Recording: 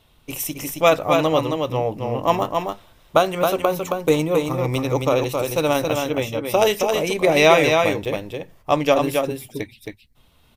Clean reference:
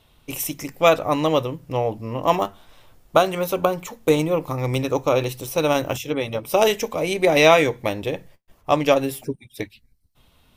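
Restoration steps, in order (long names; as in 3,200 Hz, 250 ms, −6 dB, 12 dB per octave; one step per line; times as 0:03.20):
repair the gap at 0:08.05/0:09.86, 5.4 ms
echo removal 270 ms −4.5 dB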